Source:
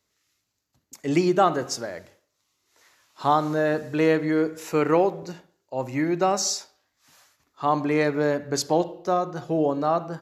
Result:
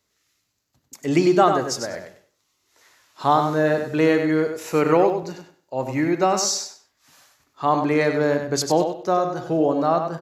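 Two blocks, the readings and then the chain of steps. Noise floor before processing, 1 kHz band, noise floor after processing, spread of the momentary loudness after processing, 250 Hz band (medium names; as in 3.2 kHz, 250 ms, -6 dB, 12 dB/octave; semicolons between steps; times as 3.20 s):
-76 dBFS, +3.0 dB, -72 dBFS, 11 LU, +3.0 dB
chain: feedback delay 97 ms, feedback 20%, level -7 dB; trim +2.5 dB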